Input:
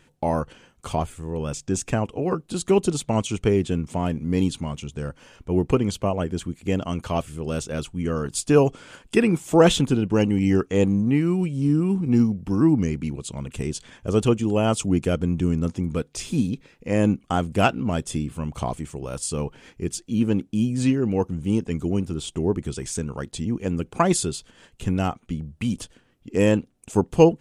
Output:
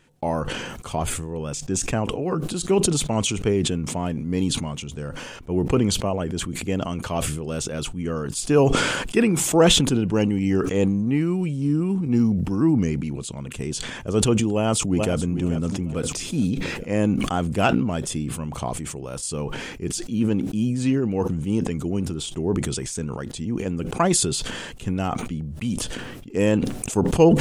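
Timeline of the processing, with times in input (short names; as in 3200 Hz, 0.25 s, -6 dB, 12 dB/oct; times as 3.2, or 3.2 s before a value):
14.49–15.21 echo throw 0.43 s, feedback 40%, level -12.5 dB
whole clip: bell 63 Hz -4.5 dB; sustainer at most 32 dB/s; gain -1.5 dB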